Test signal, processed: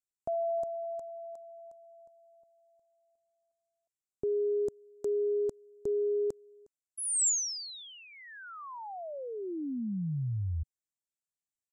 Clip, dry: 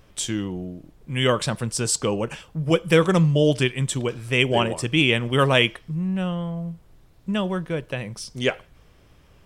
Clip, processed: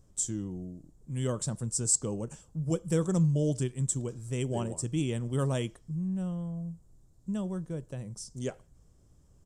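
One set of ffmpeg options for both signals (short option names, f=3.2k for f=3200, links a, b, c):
-af "firequalizer=gain_entry='entry(130,0);entry(480,-7);entry(2400,-21);entry(7400,7);entry(11000,-6)':delay=0.05:min_phase=1,aresample=32000,aresample=44100,volume=-6dB"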